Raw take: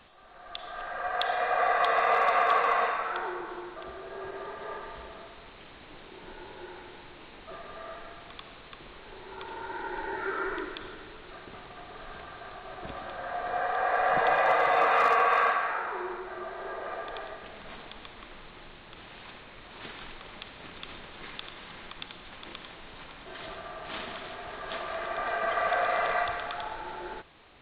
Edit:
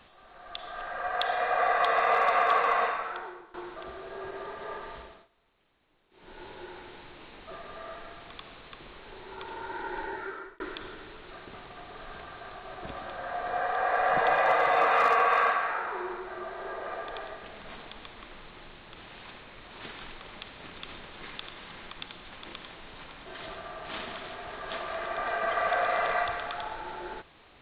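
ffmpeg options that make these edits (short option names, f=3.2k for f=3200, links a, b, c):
-filter_complex "[0:a]asplit=5[a][b][c][d][e];[a]atrim=end=3.54,asetpts=PTS-STARTPTS,afade=t=out:st=2.85:d=0.69:silence=0.1[f];[b]atrim=start=3.54:end=5.28,asetpts=PTS-STARTPTS,afade=t=in:d=0.004:c=hsin:silence=0.1,afade=t=out:st=1.41:d=0.33:silence=0.0749894[g];[c]atrim=start=5.28:end=6.1,asetpts=PTS-STARTPTS,volume=-22.5dB[h];[d]atrim=start=6.1:end=10.6,asetpts=PTS-STARTPTS,afade=t=in:d=0.33:silence=0.0749894,afade=t=out:st=3.91:d=0.59[i];[e]atrim=start=10.6,asetpts=PTS-STARTPTS,afade=t=in:d=0.004:c=hsin[j];[f][g][h][i][j]concat=n=5:v=0:a=1"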